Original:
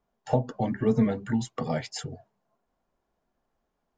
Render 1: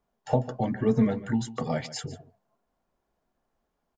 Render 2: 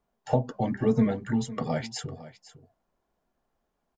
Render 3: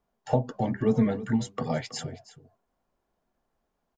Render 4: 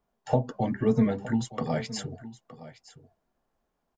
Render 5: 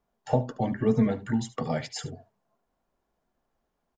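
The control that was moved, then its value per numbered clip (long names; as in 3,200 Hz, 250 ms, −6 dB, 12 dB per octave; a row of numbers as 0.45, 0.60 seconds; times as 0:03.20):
single-tap delay, delay time: 147, 505, 323, 916, 73 milliseconds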